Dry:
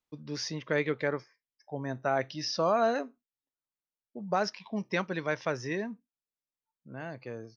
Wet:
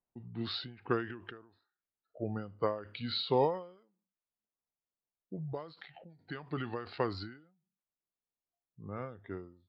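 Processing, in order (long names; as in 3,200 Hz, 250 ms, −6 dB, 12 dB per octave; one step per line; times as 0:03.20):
low-pass that shuts in the quiet parts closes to 1,300 Hz, open at −27.5 dBFS
change of speed 0.781×
every ending faded ahead of time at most 110 dB per second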